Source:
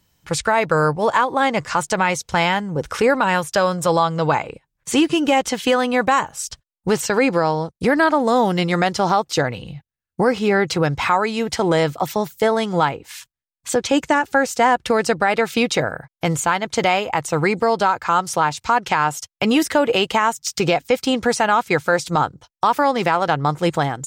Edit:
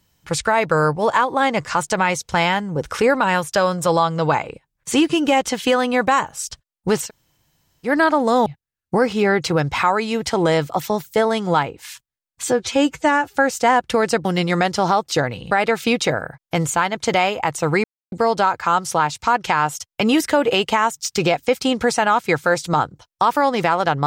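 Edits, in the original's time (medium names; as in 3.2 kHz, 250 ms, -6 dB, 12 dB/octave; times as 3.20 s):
7.06–7.88 s: room tone, crossfade 0.10 s
8.46–9.72 s: move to 15.21 s
13.70–14.30 s: stretch 1.5×
17.54 s: insert silence 0.28 s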